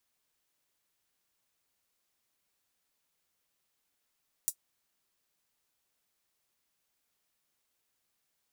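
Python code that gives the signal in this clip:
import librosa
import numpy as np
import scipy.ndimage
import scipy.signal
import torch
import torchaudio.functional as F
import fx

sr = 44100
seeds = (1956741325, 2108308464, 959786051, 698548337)

y = fx.drum_hat(sr, length_s=0.24, from_hz=7600.0, decay_s=0.08)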